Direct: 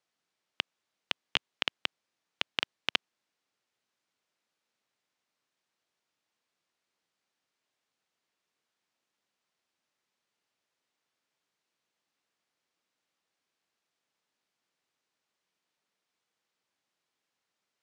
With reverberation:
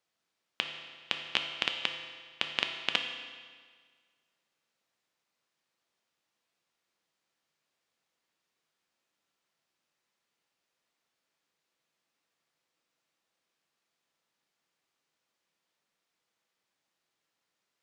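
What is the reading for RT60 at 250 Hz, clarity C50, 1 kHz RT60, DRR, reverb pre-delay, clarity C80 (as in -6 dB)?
1.7 s, 6.0 dB, 1.7 s, 4.0 dB, 6 ms, 7.5 dB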